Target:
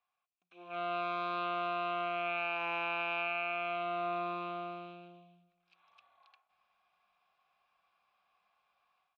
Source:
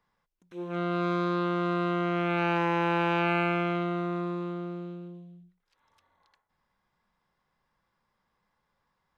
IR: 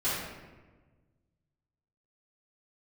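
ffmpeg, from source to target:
-filter_complex "[0:a]asplit=3[link_01][link_02][link_03];[link_01]bandpass=frequency=730:width_type=q:width=8,volume=0dB[link_04];[link_02]bandpass=frequency=1090:width_type=q:width=8,volume=-6dB[link_05];[link_03]bandpass=frequency=2440:width_type=q:width=8,volume=-9dB[link_06];[link_04][link_05][link_06]amix=inputs=3:normalize=0,lowshelf=frequency=390:gain=5,dynaudnorm=framelen=600:gausssize=3:maxgain=12dB,equalizer=frequency=125:width_type=o:width=1:gain=-9,equalizer=frequency=250:width_type=o:width=1:gain=-8,equalizer=frequency=500:width_type=o:width=1:gain=-10,equalizer=frequency=1000:width_type=o:width=1:gain=-6,equalizer=frequency=2000:width_type=o:width=1:gain=5,equalizer=frequency=4000:width_type=o:width=1:gain=6,acompressor=threshold=-36dB:ratio=16,asplit=2[link_07][link_08];[link_08]adelay=316,lowpass=frequency=2000:poles=1,volume=-23.5dB,asplit=2[link_09][link_10];[link_10]adelay=316,lowpass=frequency=2000:poles=1,volume=0.34[link_11];[link_09][link_11]amix=inputs=2:normalize=0[link_12];[link_07][link_12]amix=inputs=2:normalize=0,volume=4.5dB"

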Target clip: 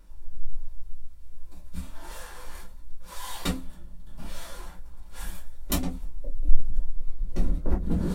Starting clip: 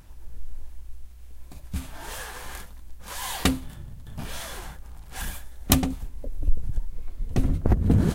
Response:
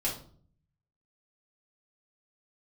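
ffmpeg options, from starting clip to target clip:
-filter_complex "[0:a]equalizer=frequency=91:width=1.5:gain=-10[link_01];[1:a]atrim=start_sample=2205,afade=type=out:start_time=0.15:duration=0.01,atrim=end_sample=7056,asetrate=74970,aresample=44100[link_02];[link_01][link_02]afir=irnorm=-1:irlink=0,volume=-7.5dB"

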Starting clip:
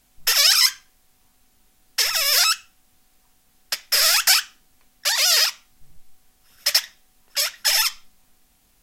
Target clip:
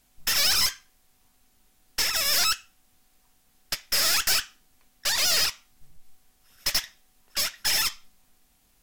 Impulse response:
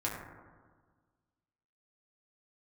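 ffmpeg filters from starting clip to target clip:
-af "aeval=exprs='(tanh(8.91*val(0)+0.65)-tanh(0.65))/8.91':channel_layout=same"

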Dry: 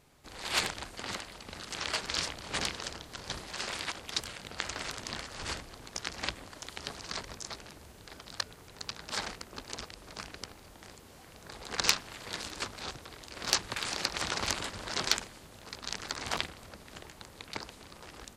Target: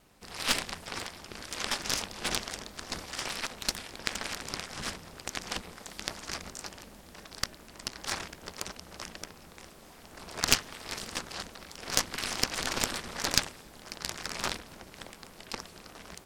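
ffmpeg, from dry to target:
ffmpeg -i in.wav -af "aeval=exprs='val(0)*sin(2*PI*110*n/s)':channel_layout=same,aeval=exprs='0.473*(cos(1*acos(clip(val(0)/0.473,-1,1)))-cos(1*PI/2))+0.0596*(cos(8*acos(clip(val(0)/0.473,-1,1)))-cos(8*PI/2))':channel_layout=same,asetrate=49833,aresample=44100,volume=4dB" out.wav

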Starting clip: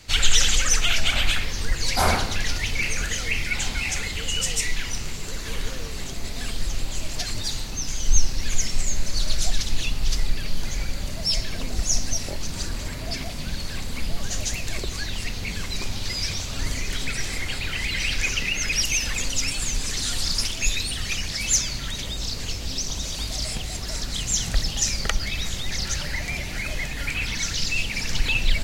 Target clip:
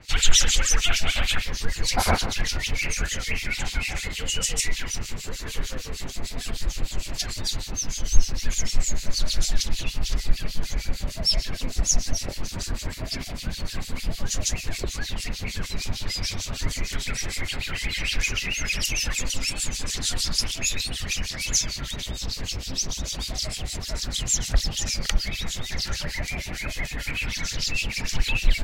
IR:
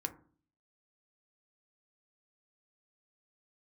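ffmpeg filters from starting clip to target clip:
-filter_complex "[0:a]acrossover=split=2200[link_01][link_02];[link_01]aeval=exprs='val(0)*(1-1/2+1/2*cos(2*PI*6.6*n/s))':channel_layout=same[link_03];[link_02]aeval=exprs='val(0)*(1-1/2-1/2*cos(2*PI*6.6*n/s))':channel_layout=same[link_04];[link_03][link_04]amix=inputs=2:normalize=0,volume=3.5dB"

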